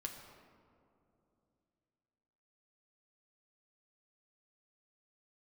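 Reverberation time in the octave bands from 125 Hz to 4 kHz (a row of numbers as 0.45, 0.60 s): 3.5, 3.4, 3.1, 2.5, 1.5, 1.0 s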